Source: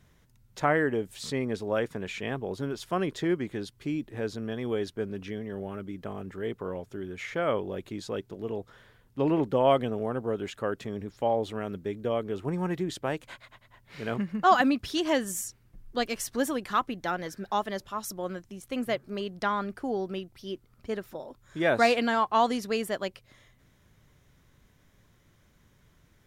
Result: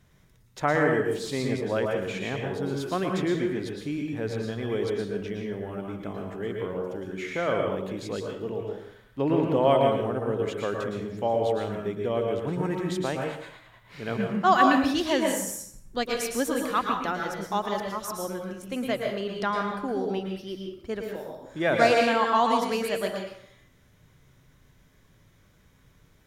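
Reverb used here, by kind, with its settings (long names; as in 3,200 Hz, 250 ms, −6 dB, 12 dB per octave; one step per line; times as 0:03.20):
dense smooth reverb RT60 0.66 s, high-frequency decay 0.8×, pre-delay 100 ms, DRR 0.5 dB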